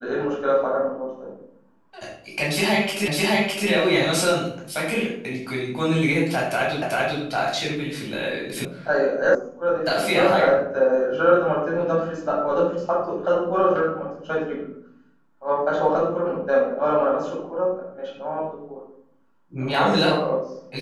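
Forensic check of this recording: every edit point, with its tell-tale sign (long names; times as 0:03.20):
0:03.08: the same again, the last 0.61 s
0:06.82: the same again, the last 0.39 s
0:08.65: cut off before it has died away
0:09.35: cut off before it has died away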